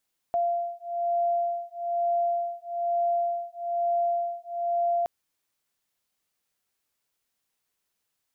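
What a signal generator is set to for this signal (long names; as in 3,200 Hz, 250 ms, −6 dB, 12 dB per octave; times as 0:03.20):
two tones that beat 690 Hz, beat 1.1 Hz, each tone −27.5 dBFS 4.72 s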